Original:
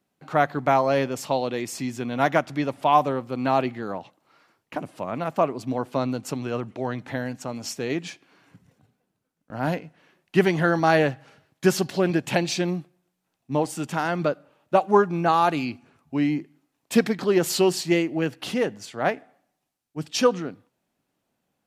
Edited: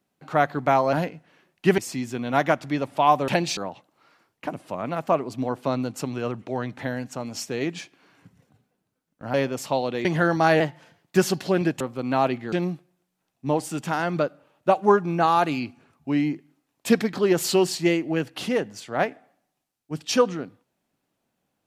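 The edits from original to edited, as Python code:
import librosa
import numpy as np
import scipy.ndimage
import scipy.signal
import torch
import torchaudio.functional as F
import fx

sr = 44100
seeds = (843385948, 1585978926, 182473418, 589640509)

y = fx.edit(x, sr, fx.swap(start_s=0.93, length_s=0.71, other_s=9.63, other_length_s=0.85),
    fx.swap(start_s=3.14, length_s=0.72, other_s=12.29, other_length_s=0.29),
    fx.speed_span(start_s=11.03, length_s=0.62, speed=1.1), tone=tone)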